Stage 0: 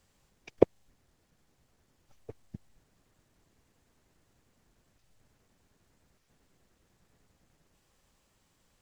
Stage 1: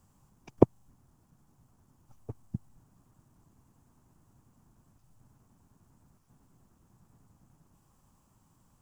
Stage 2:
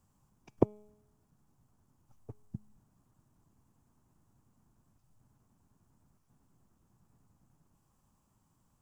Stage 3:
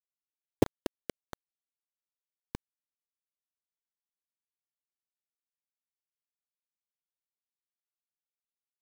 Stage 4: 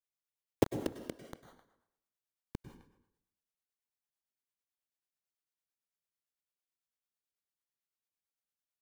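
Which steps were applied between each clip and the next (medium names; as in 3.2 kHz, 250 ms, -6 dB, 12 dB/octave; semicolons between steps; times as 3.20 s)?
graphic EQ 125/250/500/1000/2000/4000 Hz +7/+4/-8/+7/-11/-10 dB; trim +3.5 dB
feedback comb 210 Hz, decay 0.88 s, mix 40%; trim -2 dB
band-passed feedback delay 235 ms, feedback 59%, band-pass 390 Hz, level -10 dB; FDN reverb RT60 1.4 s, low-frequency decay 0.85×, high-frequency decay 0.75×, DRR 12.5 dB; bit crusher 5-bit
speakerphone echo 260 ms, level -22 dB; plate-style reverb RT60 0.79 s, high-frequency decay 0.8×, pre-delay 90 ms, DRR 8 dB; harmonic tremolo 9 Hz, depth 50%, crossover 410 Hz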